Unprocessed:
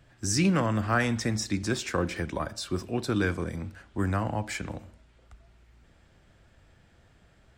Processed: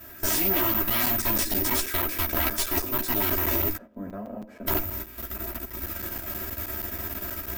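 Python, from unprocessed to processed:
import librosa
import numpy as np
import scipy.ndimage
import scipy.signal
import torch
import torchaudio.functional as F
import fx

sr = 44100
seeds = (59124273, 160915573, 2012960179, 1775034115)

p1 = fx.bin_compress(x, sr, power=0.6)
p2 = fx.rider(p1, sr, range_db=4, speed_s=0.5)
p3 = fx.low_shelf(p2, sr, hz=300.0, db=-5.0, at=(1.87, 3.07))
p4 = p3 + fx.echo_single(p3, sr, ms=119, db=-22.0, dry=0)
p5 = (np.kron(p4[::3], np.eye(3)[0]) * 3)[:len(p4)]
p6 = fx.double_bandpass(p5, sr, hz=340.0, octaves=1.1, at=(3.75, 4.66), fade=0.02)
p7 = fx.level_steps(p6, sr, step_db=12)
p8 = fx.cheby_harmonics(p7, sr, harmonics=(7, 8), levels_db=(-7, -13), full_scale_db=-4.5)
p9 = p8 + 0.82 * np.pad(p8, (int(3.1 * sr / 1000.0), 0))[:len(p8)]
p10 = fx.chorus_voices(p9, sr, voices=6, hz=1.5, base_ms=13, depth_ms=3.0, mix_pct=45)
p11 = fx.buffer_crackle(p10, sr, first_s=0.74, period_s=0.16, block=256, kind='zero')
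y = F.gain(torch.from_numpy(p11), -1.5).numpy()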